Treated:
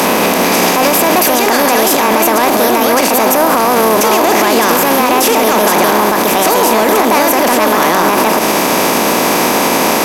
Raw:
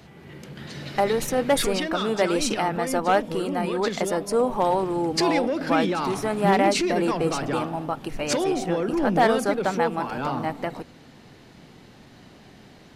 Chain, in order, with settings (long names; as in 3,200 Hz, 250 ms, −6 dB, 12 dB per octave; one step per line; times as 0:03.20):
compressor on every frequency bin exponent 0.4
high-pass filter 88 Hz 12 dB per octave
parametric band 9,200 Hz +12.5 dB 0.43 octaves
speed change +29%
in parallel at −5.5 dB: soft clipping −16.5 dBFS, distortion −10 dB
on the sum: boost into a limiter +11.5 dB
level −1 dB